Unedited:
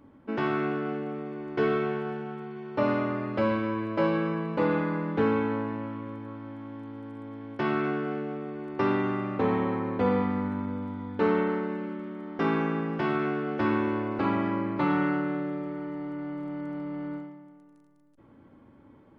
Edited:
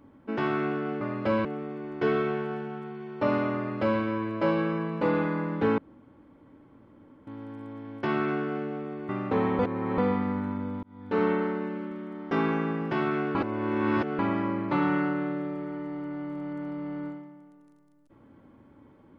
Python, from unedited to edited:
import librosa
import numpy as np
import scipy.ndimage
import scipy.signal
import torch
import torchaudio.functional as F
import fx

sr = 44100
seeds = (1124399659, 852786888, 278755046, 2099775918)

y = fx.edit(x, sr, fx.duplicate(start_s=3.13, length_s=0.44, to_s=1.01),
    fx.room_tone_fill(start_s=5.34, length_s=1.49),
    fx.cut(start_s=8.65, length_s=0.52),
    fx.reverse_span(start_s=9.67, length_s=0.39),
    fx.fade_in_span(start_s=10.91, length_s=0.41),
    fx.reverse_span(start_s=13.43, length_s=0.84), tone=tone)